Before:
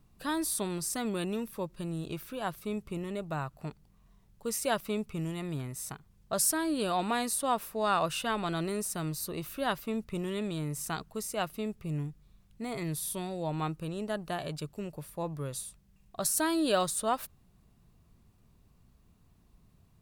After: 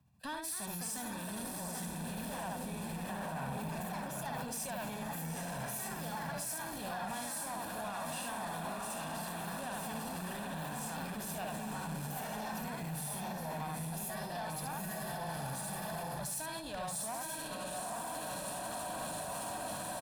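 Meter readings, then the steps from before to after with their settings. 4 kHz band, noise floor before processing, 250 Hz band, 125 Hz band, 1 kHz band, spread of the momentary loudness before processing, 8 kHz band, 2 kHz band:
-5.5 dB, -64 dBFS, -7.5 dB, -4.5 dB, -4.0 dB, 11 LU, -4.5 dB, -2.5 dB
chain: notches 50/100/150 Hz; echo 74 ms -4 dB; echoes that change speed 0.306 s, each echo +3 st, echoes 3, each echo -6 dB; on a send: diffused feedback echo 0.871 s, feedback 52%, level -3 dB; on the sum: level quantiser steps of 23 dB; HPF 81 Hz 24 dB/oct; tube stage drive 43 dB, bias 0.35; comb 1.2 ms, depth 55%; limiter -42 dBFS, peak gain reduction 4.5 dB; bell 340 Hz -8.5 dB 0.37 oct; three-band expander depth 40%; gain +11 dB

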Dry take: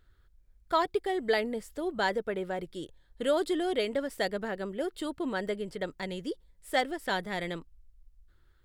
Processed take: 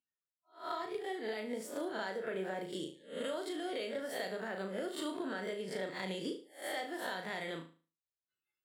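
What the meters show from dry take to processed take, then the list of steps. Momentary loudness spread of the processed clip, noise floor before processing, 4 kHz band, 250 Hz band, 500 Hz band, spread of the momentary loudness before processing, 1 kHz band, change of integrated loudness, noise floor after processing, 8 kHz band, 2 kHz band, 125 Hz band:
4 LU, -64 dBFS, -6.0 dB, -7.0 dB, -8.0 dB, 9 LU, -9.0 dB, -8.0 dB, under -85 dBFS, -2.0 dB, -7.0 dB, -6.5 dB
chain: spectral swells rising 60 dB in 0.35 s; HPF 130 Hz 24 dB/oct; spectral noise reduction 30 dB; low shelf 410 Hz -3.5 dB; vocal rider within 5 dB 0.5 s; limiter -21 dBFS, peak gain reduction 5.5 dB; compressor, threshold -36 dBFS, peak gain reduction 10 dB; flutter echo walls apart 6.3 m, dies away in 0.37 s; gain -1 dB

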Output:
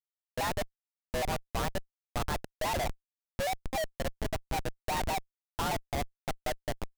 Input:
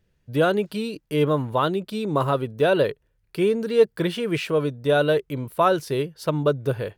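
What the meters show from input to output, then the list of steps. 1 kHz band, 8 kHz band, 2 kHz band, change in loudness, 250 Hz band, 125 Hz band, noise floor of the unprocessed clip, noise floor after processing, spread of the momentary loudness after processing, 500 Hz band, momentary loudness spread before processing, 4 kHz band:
-7.5 dB, n/a, -8.5 dB, -12.0 dB, -16.0 dB, -12.5 dB, -69 dBFS, under -85 dBFS, 6 LU, -16.0 dB, 7 LU, -6.5 dB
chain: mistuned SSB +250 Hz 300–2900 Hz; Schmitt trigger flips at -21 dBFS; shaped vibrato square 4.9 Hz, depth 160 cents; gain -6.5 dB

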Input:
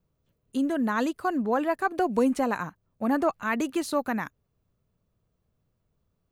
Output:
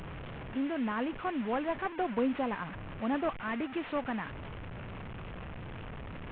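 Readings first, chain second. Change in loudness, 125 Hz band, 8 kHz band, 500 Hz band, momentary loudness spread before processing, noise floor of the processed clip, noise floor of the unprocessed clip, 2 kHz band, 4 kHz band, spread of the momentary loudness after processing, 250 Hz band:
-8.5 dB, +2.5 dB, under -35 dB, -7.0 dB, 8 LU, -43 dBFS, -76 dBFS, -6.0 dB, -4.0 dB, 13 LU, -6.5 dB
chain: delta modulation 16 kbps, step -30 dBFS; bell 380 Hz -2 dB; gain -6 dB

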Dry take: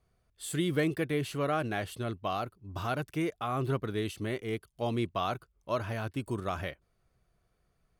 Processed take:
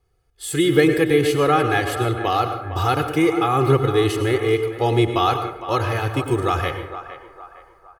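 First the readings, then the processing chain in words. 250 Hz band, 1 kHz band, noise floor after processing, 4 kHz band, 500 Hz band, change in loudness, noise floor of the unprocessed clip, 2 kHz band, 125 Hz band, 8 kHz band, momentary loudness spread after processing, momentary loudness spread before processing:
+13.0 dB, +15.0 dB, -57 dBFS, +14.0 dB, +15.0 dB, +14.0 dB, -75 dBFS, +13.5 dB, +12.5 dB, +12.0 dB, 10 LU, 7 LU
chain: comb 2.4 ms, depth 85%; AGC gain up to 9.5 dB; narrowing echo 0.459 s, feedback 48%, band-pass 980 Hz, level -10.5 dB; plate-style reverb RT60 0.7 s, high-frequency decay 0.55×, pre-delay 85 ms, DRR 7.5 dB; gain +1.5 dB

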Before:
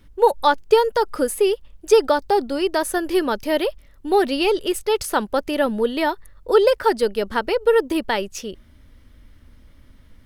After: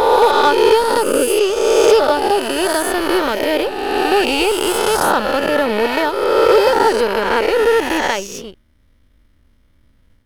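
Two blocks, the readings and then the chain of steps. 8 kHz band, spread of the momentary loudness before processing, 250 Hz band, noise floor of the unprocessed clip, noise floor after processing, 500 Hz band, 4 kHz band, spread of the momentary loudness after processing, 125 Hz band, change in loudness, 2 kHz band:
+8.5 dB, 8 LU, +3.5 dB, -50 dBFS, -55 dBFS, +5.0 dB, +7.5 dB, 6 LU, n/a, +5.5 dB, +8.5 dB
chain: spectral swells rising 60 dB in 2.32 s; power-law curve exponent 1.4; soft clip -11 dBFS, distortion -14 dB; gain +7 dB

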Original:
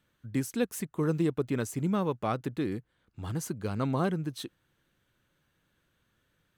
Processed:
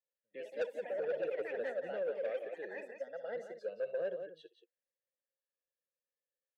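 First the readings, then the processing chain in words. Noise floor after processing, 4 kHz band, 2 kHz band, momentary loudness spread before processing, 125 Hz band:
under -85 dBFS, under -10 dB, -3.5 dB, 9 LU, under -30 dB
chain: spectral noise reduction 21 dB; HPF 200 Hz 24 dB/oct; high shelf 3800 Hz -9.5 dB; comb 1.8 ms, depth 82%; echoes that change speed 0.115 s, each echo +4 st, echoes 3; vowel filter e; in parallel at -11 dB: hard clip -32 dBFS, distortion -9 dB; on the sum: tapped delay 65/176 ms -17/-9.5 dB; soft clip -28.5 dBFS, distortion -13 dB; gain -1 dB

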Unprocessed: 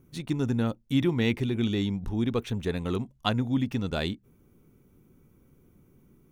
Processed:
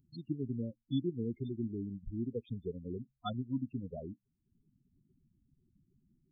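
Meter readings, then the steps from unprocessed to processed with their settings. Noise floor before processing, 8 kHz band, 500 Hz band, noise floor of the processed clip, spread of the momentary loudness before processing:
-62 dBFS, n/a, -10.5 dB, -83 dBFS, 5 LU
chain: transient shaper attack +4 dB, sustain -10 dB; loudest bins only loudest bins 8; pre-emphasis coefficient 0.8; gain +3 dB

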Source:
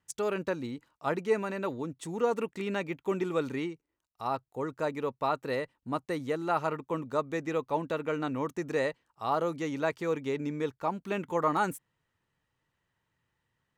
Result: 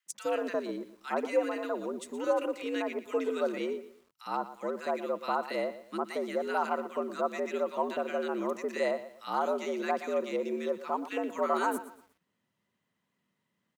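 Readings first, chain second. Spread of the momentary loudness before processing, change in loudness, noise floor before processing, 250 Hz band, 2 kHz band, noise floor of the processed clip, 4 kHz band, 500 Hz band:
6 LU, -0.5 dB, -83 dBFS, -2.0 dB, -0.5 dB, -81 dBFS, +0.5 dB, +0.5 dB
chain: frequency shift +79 Hz; bands offset in time highs, lows 60 ms, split 1500 Hz; lo-fi delay 0.119 s, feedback 35%, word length 9-bit, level -14 dB

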